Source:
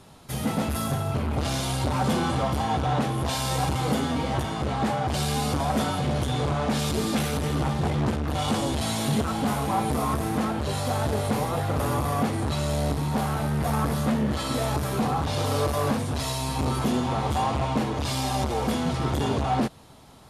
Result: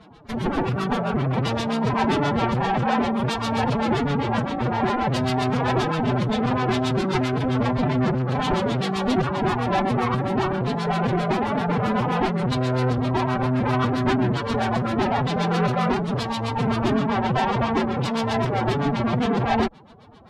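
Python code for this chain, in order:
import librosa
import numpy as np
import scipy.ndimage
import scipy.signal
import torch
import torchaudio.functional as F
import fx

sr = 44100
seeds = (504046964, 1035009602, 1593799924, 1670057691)

y = fx.filter_lfo_lowpass(x, sr, shape='sine', hz=7.6, low_hz=600.0, high_hz=4200.0, q=0.96)
y = fx.cheby_harmonics(y, sr, harmonics=(8,), levels_db=(-17,), full_scale_db=-11.5)
y = fx.pitch_keep_formants(y, sr, semitones=9.5)
y = y * librosa.db_to_amplitude(3.0)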